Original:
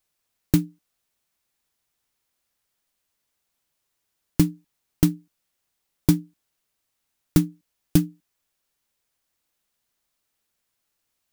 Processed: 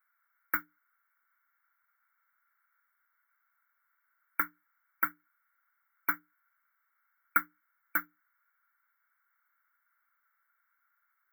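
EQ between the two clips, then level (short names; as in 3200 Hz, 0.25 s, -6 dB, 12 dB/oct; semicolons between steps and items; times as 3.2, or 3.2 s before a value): resonant high-pass 1400 Hz, resonance Q 8.9; brick-wall FIR band-stop 2300–13000 Hz; 0.0 dB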